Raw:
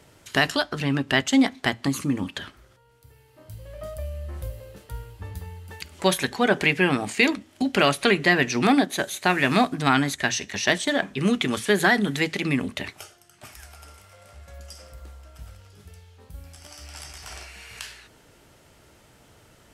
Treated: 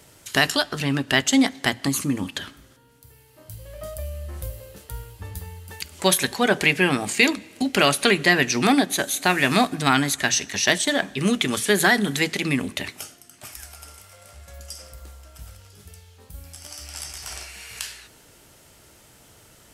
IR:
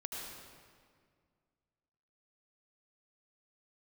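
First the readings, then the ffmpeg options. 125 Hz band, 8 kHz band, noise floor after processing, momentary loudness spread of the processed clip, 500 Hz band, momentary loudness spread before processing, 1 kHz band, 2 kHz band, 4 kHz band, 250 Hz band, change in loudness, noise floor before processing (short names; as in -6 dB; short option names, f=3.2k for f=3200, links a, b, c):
+0.5 dB, +7.5 dB, -53 dBFS, 20 LU, +0.5 dB, 19 LU, +1.0 dB, +2.0 dB, +4.0 dB, +0.5 dB, +2.0 dB, -56 dBFS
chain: -filter_complex "[0:a]highshelf=f=4.9k:g=10.5,asplit=2[a][b];[1:a]atrim=start_sample=2205[c];[b][c]afir=irnorm=-1:irlink=0,volume=-22.5dB[d];[a][d]amix=inputs=2:normalize=0"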